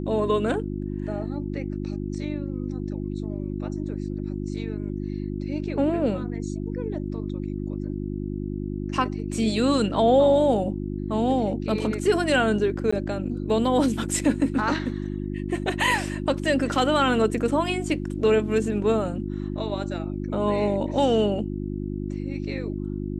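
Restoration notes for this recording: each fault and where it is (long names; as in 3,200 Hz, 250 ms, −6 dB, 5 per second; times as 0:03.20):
mains hum 50 Hz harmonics 7 −30 dBFS
0:12.91–0:12.93: drop-out 15 ms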